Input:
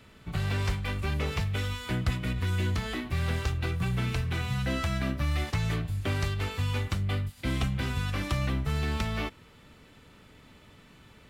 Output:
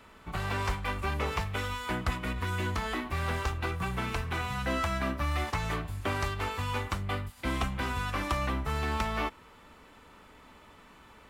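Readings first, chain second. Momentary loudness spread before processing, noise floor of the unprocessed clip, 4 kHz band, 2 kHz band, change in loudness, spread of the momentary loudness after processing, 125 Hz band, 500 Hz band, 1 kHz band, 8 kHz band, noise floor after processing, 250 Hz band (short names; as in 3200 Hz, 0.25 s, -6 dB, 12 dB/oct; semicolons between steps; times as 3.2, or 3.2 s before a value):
2 LU, -55 dBFS, -2.0 dB, +1.5 dB, -2.0 dB, 3 LU, -6.0 dB, +1.0 dB, +6.0 dB, -0.5 dB, -55 dBFS, -3.0 dB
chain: ten-band EQ 125 Hz -10 dB, 1000 Hz +8 dB, 4000 Hz -3 dB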